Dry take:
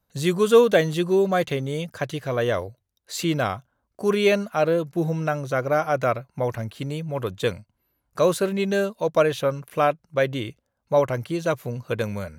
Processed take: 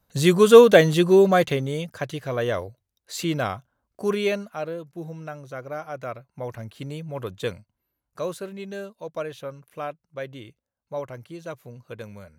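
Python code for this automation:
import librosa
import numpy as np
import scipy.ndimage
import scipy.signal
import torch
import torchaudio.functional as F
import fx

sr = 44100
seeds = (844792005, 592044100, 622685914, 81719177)

y = fx.gain(x, sr, db=fx.line((1.25, 4.5), (1.93, -2.0), (4.06, -2.0), (4.76, -11.5), (6.0, -11.5), (6.84, -4.5), (7.5, -4.5), (8.52, -12.0)))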